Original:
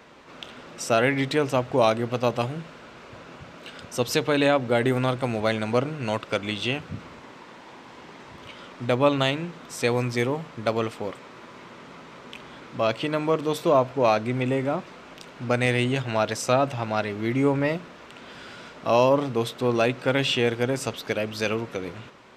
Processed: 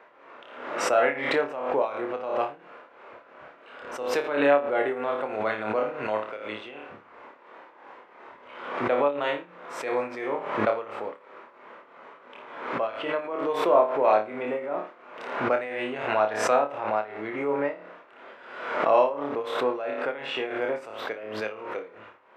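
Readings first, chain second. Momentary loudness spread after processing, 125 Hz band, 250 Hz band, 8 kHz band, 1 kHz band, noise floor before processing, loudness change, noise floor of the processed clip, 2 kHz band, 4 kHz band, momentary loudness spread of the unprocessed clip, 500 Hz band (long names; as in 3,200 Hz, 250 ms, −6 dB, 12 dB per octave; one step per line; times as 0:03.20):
19 LU, −19.0 dB, −7.5 dB, can't be measured, +0.5 dB, −46 dBFS, −2.5 dB, −54 dBFS, −2.0 dB, −9.0 dB, 22 LU, −1.5 dB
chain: on a send: flutter between parallel walls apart 4.8 metres, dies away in 0.39 s
on the sum: amplitude tremolo 2.9 Hz, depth 79%
three-way crossover with the lows and the highs turned down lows −23 dB, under 360 Hz, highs −23 dB, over 2,300 Hz
background raised ahead of every attack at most 58 dB per second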